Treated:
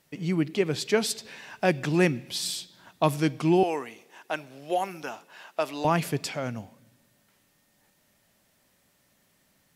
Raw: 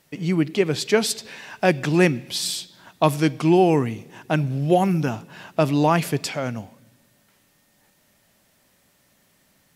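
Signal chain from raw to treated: 3.63–5.85 s: high-pass 550 Hz 12 dB/octave; trim -5 dB

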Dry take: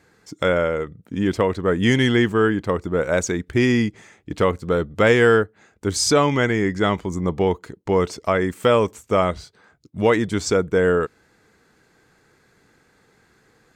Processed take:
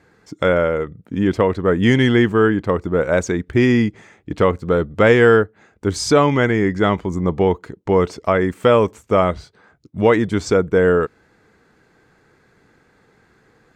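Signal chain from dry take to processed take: treble shelf 3.9 kHz -10 dB; trim +3.5 dB

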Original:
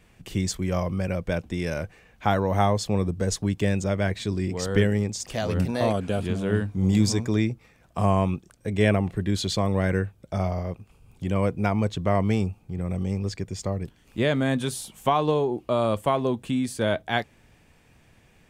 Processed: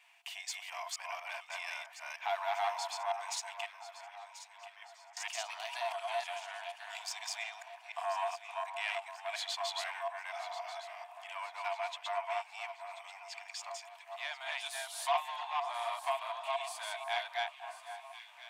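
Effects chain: chunks repeated in reverse 240 ms, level -0.5 dB; 3.66–5.17 s: gate -13 dBFS, range -25 dB; in parallel at +1 dB: compression, threshold -30 dBFS, peak gain reduction 17 dB; on the sum: saturation -14 dBFS, distortion -14 dB; rippled Chebyshev high-pass 670 Hz, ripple 9 dB; on a send: echo whose repeats swap between lows and highs 518 ms, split 1.7 kHz, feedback 67%, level -9.5 dB; on the sum: trim -4.5 dB

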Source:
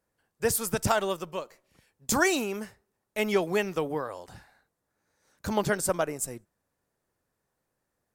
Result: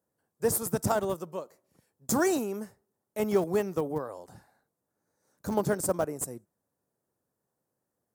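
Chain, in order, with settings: in parallel at -4 dB: Schmitt trigger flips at -24 dBFS; on the sum: high-pass 110 Hz 12 dB/octave; peaking EQ 2.7 kHz -14 dB 1.9 oct

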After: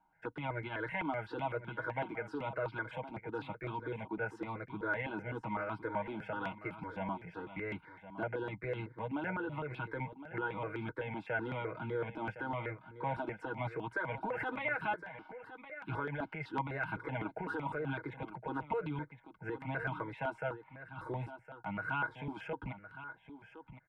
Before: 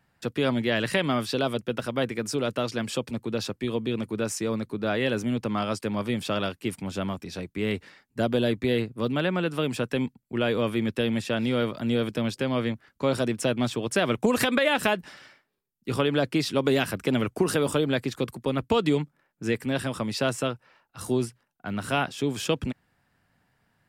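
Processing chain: treble shelf 12 kHz -8 dB; comb 6.3 ms, depth 78%; peak limiter -19 dBFS, peak gain reduction 11.5 dB; distance through air 490 m; small resonant body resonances 910/1500/2100 Hz, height 17 dB, ringing for 25 ms; on a send: delay 1062 ms -12.5 dB; on the sum: stepped phaser 7.9 Hz 500–1900 Hz; trim -8 dB

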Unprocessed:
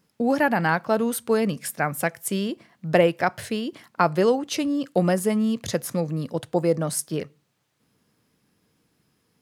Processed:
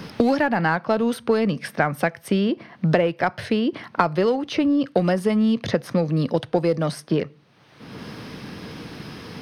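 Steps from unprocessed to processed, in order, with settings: Savitzky-Golay filter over 15 samples; in parallel at -12 dB: hard clipper -21 dBFS, distortion -7 dB; on the sum: three bands compressed up and down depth 100%

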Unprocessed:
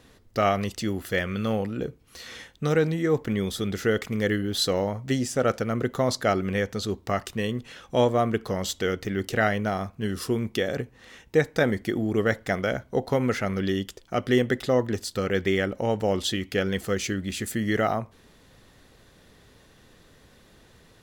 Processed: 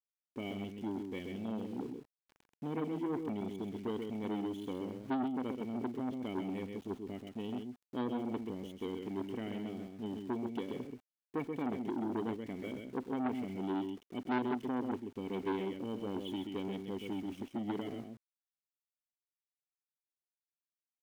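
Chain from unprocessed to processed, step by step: level-controlled noise filter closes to 1 kHz, open at -18 dBFS; cascade formant filter i; peaking EQ 170 Hz -5 dB 2.9 oct; comb of notches 1.2 kHz; small resonant body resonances 400/1200 Hz, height 7 dB, ringing for 25 ms; small samples zeroed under -54.5 dBFS; on a send: delay 131 ms -5.5 dB; on the sum: transformer saturation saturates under 1 kHz; trim +1 dB

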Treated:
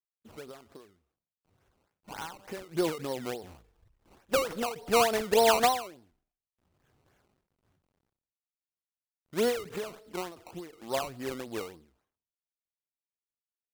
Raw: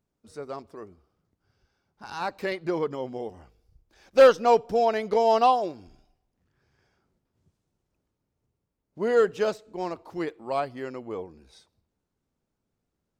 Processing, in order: CVSD coder 64 kbps; decimation with a swept rate 18×, swing 100% 3.6 Hz; tempo 0.96×; endings held to a fixed fall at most 110 dB/s

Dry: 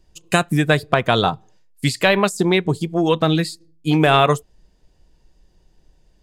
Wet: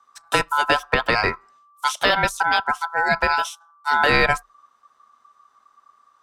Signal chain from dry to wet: ring modulator 1.2 kHz; frequency shift -32 Hz

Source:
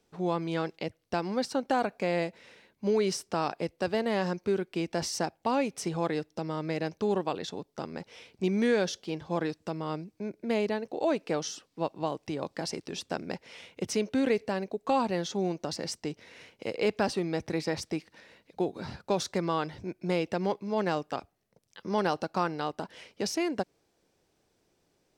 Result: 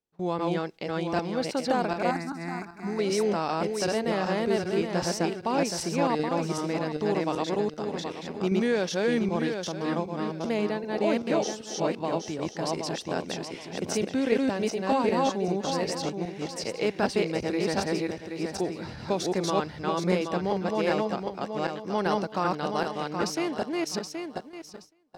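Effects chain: backward echo that repeats 387 ms, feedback 49%, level 0 dB; gate with hold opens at -34 dBFS; 2.11–2.99 s: static phaser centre 1.3 kHz, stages 4

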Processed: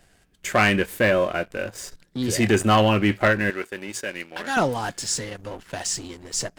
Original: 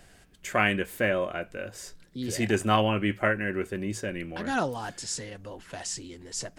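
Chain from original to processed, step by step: 3.50–4.57 s: high-pass 900 Hz 6 dB/octave; waveshaping leveller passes 2

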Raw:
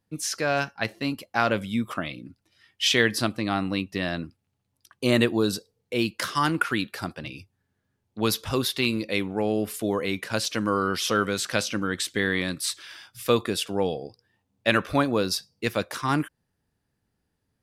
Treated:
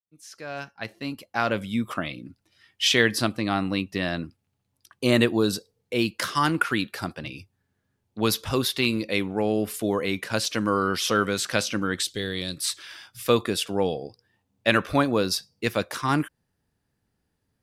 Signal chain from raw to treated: fade-in on the opening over 1.95 s; 12.03–12.58 s: graphic EQ 250/1000/2000/4000 Hz -8/-11/-10/+6 dB; trim +1 dB

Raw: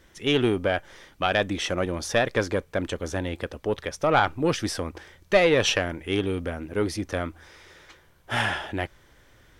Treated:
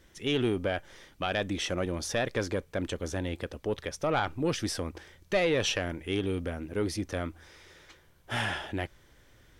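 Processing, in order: peaking EQ 1.1 kHz -3.5 dB 2.2 oct; in parallel at +1.5 dB: peak limiter -20.5 dBFS, peak gain reduction 11.5 dB; on the sum: trim -9 dB

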